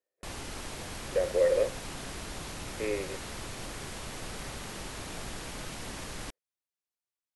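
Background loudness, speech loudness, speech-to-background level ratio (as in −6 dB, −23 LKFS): −40.0 LKFS, −30.0 LKFS, 10.0 dB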